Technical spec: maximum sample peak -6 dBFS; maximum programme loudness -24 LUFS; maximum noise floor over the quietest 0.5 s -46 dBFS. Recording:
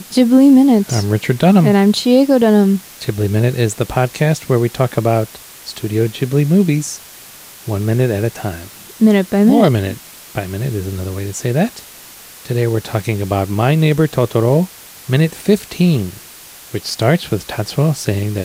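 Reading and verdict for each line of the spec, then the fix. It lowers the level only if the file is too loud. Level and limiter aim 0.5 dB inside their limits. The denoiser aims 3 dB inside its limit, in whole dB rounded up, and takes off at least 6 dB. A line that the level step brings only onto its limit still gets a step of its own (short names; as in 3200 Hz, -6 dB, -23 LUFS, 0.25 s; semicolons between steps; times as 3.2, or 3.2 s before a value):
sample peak -1.5 dBFS: fail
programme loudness -15.0 LUFS: fail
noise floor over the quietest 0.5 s -38 dBFS: fail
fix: gain -9.5 dB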